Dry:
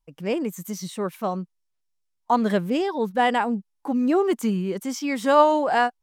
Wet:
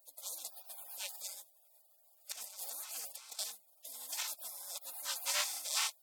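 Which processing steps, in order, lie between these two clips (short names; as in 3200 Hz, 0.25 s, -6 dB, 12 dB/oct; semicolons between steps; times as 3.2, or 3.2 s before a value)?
per-bin compression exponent 0.4; inverse Chebyshev high-pass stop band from 430 Hz, stop band 60 dB; spectral gate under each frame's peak -25 dB weak; 2.32–3.39 negative-ratio compressor -53 dBFS, ratio -1; gain +5 dB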